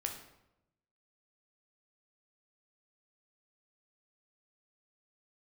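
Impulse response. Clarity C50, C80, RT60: 7.0 dB, 10.0 dB, 0.90 s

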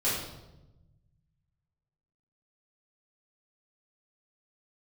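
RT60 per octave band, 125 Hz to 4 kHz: 2.3, 1.5, 1.1, 0.85, 0.70, 0.75 s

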